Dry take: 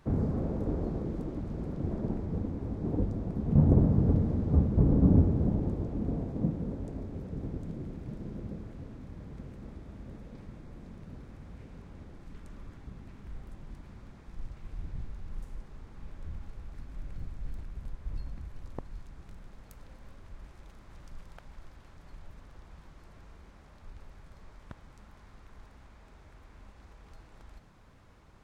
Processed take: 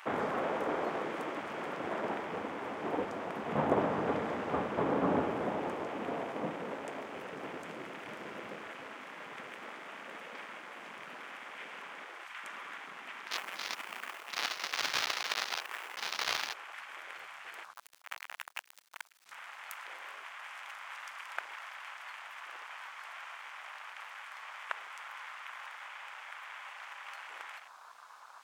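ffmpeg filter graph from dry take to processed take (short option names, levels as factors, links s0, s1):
-filter_complex "[0:a]asettb=1/sr,asplit=3[s0][s1][s2];[s0]atrim=end=13.314[s3];[s1]atrim=start=13.31:end=16.54,asetpts=PTS-STARTPTS,afade=t=in:d=0.004:c=qsin,afade=t=out:st=3.226:d=0.004:c=qsin,lowpass=1100,lowshelf=f=360:g=3.5,acrusher=bits=3:mode=log:mix=0:aa=0.000001[s4];[s2]atrim=start=16.536[s5];[s3][s4]acrossfade=d=0.004:c1=hsin:c2=qsin[s6];[s6][s5]acrossfade=d=0.004:c1=qsin:c2=hsin,asettb=1/sr,asplit=3[s7][s8][s9];[s7]atrim=end=17.734[s10];[s8]atrim=start=17.73:end=19.26,asetpts=PTS-STARTPTS,afade=t=in:d=0.004:c=qsin,afade=t=out:st=1.526:d=0.004:c=qsin,acrusher=bits=7:dc=4:mix=0:aa=0.000001,aeval=exprs='(tanh(178*val(0)+0.75)-tanh(0.75))/178':c=same[s11];[s9]atrim=start=19.256[s12];[s10][s11]acrossfade=d=0.004:c1=hsin:c2=qsin[s13];[s13][s12]acrossfade=d=0.004:c1=qsin:c2=hsin,highpass=1100,afwtdn=0.000631,highshelf=f=2400:g=10,volume=7.5"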